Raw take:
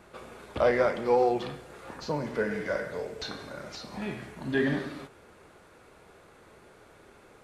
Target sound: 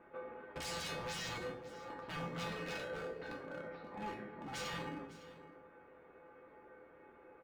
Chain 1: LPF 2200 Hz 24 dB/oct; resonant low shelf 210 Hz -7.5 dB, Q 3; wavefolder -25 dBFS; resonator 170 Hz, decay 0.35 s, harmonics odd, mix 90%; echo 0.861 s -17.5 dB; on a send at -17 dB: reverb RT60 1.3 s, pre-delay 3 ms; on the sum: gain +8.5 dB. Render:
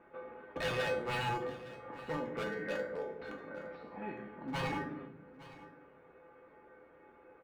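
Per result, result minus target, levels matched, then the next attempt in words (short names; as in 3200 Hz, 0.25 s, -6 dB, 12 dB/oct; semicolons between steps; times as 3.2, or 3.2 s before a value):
echo 0.305 s late; wavefolder: distortion -7 dB
LPF 2200 Hz 24 dB/oct; resonant low shelf 210 Hz -7.5 dB, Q 3; wavefolder -25 dBFS; resonator 170 Hz, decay 0.35 s, harmonics odd, mix 90%; echo 0.556 s -17.5 dB; on a send at -17 dB: reverb RT60 1.3 s, pre-delay 3 ms; on the sum: gain +8.5 dB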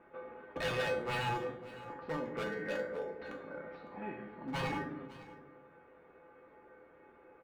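wavefolder: distortion -7 dB
LPF 2200 Hz 24 dB/oct; resonant low shelf 210 Hz -7.5 dB, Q 3; wavefolder -32.5 dBFS; resonator 170 Hz, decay 0.35 s, harmonics odd, mix 90%; echo 0.556 s -17.5 dB; on a send at -17 dB: reverb RT60 1.3 s, pre-delay 3 ms; on the sum: gain +8.5 dB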